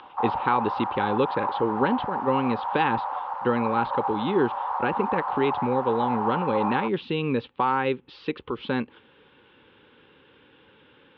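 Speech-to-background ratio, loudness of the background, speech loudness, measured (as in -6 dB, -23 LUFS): 2.5 dB, -29.5 LUFS, -27.0 LUFS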